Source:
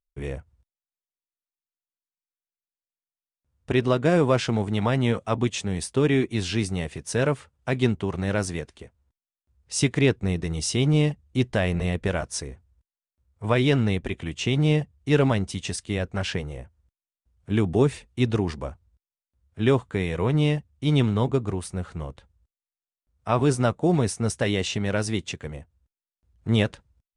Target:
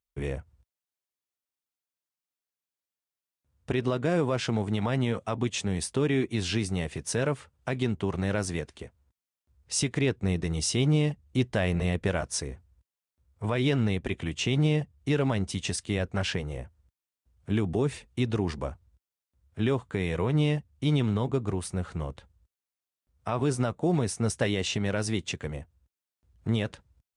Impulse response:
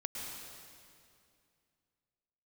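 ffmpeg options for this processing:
-filter_complex "[0:a]highpass=47,asplit=2[s0][s1];[s1]acompressor=threshold=0.0251:ratio=6,volume=0.944[s2];[s0][s2]amix=inputs=2:normalize=0,alimiter=limit=0.251:level=0:latency=1:release=104,volume=0.631"

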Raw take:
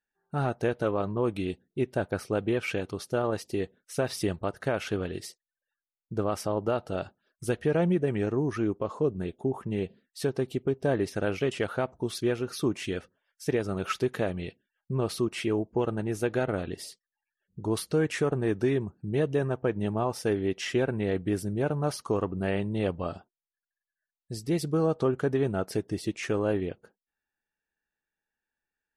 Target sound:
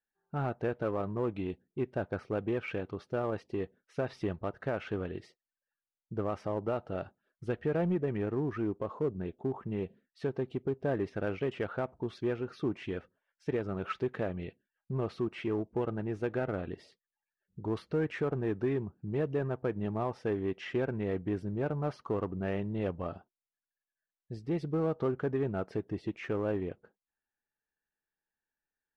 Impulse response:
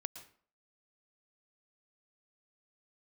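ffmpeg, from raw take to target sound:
-filter_complex "[0:a]lowpass=2300,asplit=2[s0][s1];[s1]asoftclip=type=hard:threshold=0.0447,volume=0.422[s2];[s0][s2]amix=inputs=2:normalize=0,volume=0.447"

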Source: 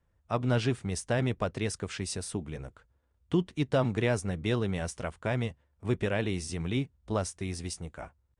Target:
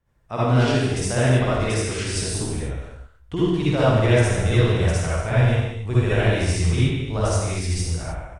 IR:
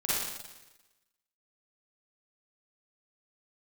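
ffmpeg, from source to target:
-filter_complex "[0:a]asplit=2[s0][s1];[s1]adelay=120,highpass=300,lowpass=3400,asoftclip=type=hard:threshold=0.0668,volume=0.141[s2];[s0][s2]amix=inputs=2:normalize=0[s3];[1:a]atrim=start_sample=2205,afade=t=out:st=0.36:d=0.01,atrim=end_sample=16317,asetrate=35280,aresample=44100[s4];[s3][s4]afir=irnorm=-1:irlink=0,asubboost=boost=7:cutoff=75"

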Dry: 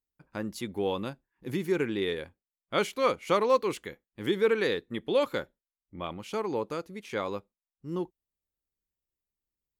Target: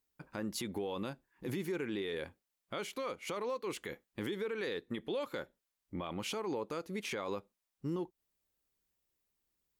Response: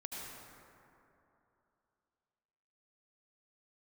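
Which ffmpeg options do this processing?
-af "acompressor=threshold=0.0126:ratio=10,lowshelf=f=110:g=-7.5,alimiter=level_in=4.22:limit=0.0631:level=0:latency=1:release=18,volume=0.237,volume=2.37"

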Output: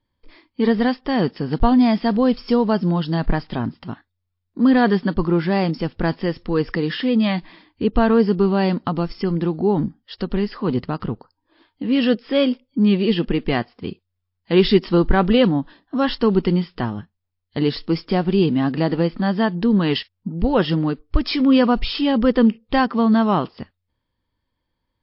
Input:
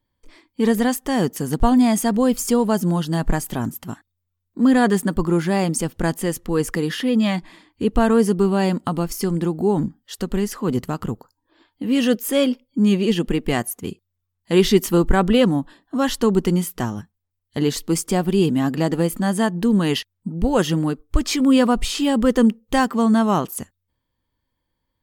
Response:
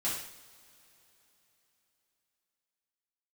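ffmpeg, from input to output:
-af "volume=1.12" -ar 12000 -c:a libmp3lame -b:a 32k

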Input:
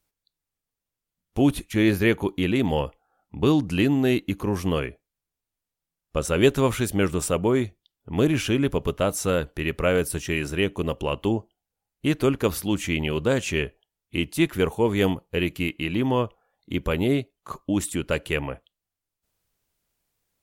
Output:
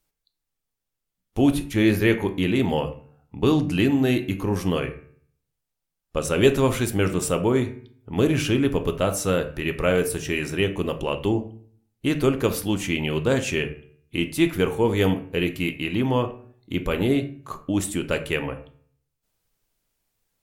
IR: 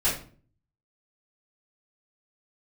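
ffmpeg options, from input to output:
-filter_complex "[0:a]bandreject=f=74.36:t=h:w=4,bandreject=f=148.72:t=h:w=4,bandreject=f=223.08:t=h:w=4,bandreject=f=297.44:t=h:w=4,bandreject=f=371.8:t=h:w=4,bandreject=f=446.16:t=h:w=4,bandreject=f=520.52:t=h:w=4,bandreject=f=594.88:t=h:w=4,bandreject=f=669.24:t=h:w=4,bandreject=f=743.6:t=h:w=4,bandreject=f=817.96:t=h:w=4,bandreject=f=892.32:t=h:w=4,bandreject=f=966.68:t=h:w=4,bandreject=f=1041.04:t=h:w=4,bandreject=f=1115.4:t=h:w=4,bandreject=f=1189.76:t=h:w=4,bandreject=f=1264.12:t=h:w=4,bandreject=f=1338.48:t=h:w=4,bandreject=f=1412.84:t=h:w=4,bandreject=f=1487.2:t=h:w=4,bandreject=f=1561.56:t=h:w=4,bandreject=f=1635.92:t=h:w=4,bandreject=f=1710.28:t=h:w=4,bandreject=f=1784.64:t=h:w=4,bandreject=f=1859:t=h:w=4,bandreject=f=1933.36:t=h:w=4,bandreject=f=2007.72:t=h:w=4,bandreject=f=2082.08:t=h:w=4,bandreject=f=2156.44:t=h:w=4,bandreject=f=2230.8:t=h:w=4,bandreject=f=2305.16:t=h:w=4,bandreject=f=2379.52:t=h:w=4,bandreject=f=2453.88:t=h:w=4,bandreject=f=2528.24:t=h:w=4,bandreject=f=2602.6:t=h:w=4,bandreject=f=2676.96:t=h:w=4,bandreject=f=2751.32:t=h:w=4,bandreject=f=2825.68:t=h:w=4,bandreject=f=2900.04:t=h:w=4,asplit=2[s0][s1];[1:a]atrim=start_sample=2205[s2];[s1][s2]afir=irnorm=-1:irlink=0,volume=0.1[s3];[s0][s3]amix=inputs=2:normalize=0"

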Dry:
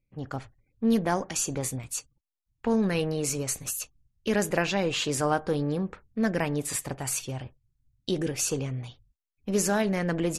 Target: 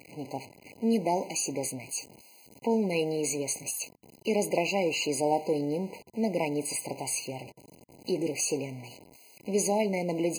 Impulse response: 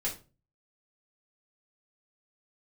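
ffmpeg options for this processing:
-af "aeval=exprs='val(0)+0.5*0.0133*sgn(val(0))':c=same,highpass=250,afftfilt=real='re*eq(mod(floor(b*sr/1024/1000),2),0)':imag='im*eq(mod(floor(b*sr/1024/1000),2),0)':win_size=1024:overlap=0.75"

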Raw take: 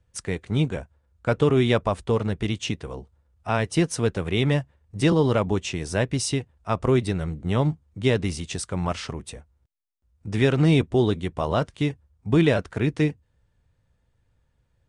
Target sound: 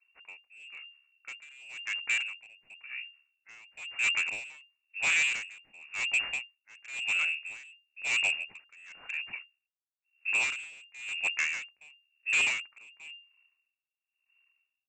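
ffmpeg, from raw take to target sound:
-filter_complex "[0:a]aeval=exprs='if(lt(val(0),0),0.251*val(0),val(0))':c=same,highshelf=f=2200:g=-10.5,acrossover=split=150[s0][s1];[s1]dynaudnorm=f=370:g=17:m=2.24[s2];[s0][s2]amix=inputs=2:normalize=0,lowpass=f=2400:t=q:w=0.5098,lowpass=f=2400:t=q:w=0.6013,lowpass=f=2400:t=q:w=0.9,lowpass=f=2400:t=q:w=2.563,afreqshift=-2800,aresample=16000,asoftclip=type=hard:threshold=0.0708,aresample=44100,aeval=exprs='val(0)*pow(10,-27*(0.5-0.5*cos(2*PI*0.97*n/s))/20)':c=same"

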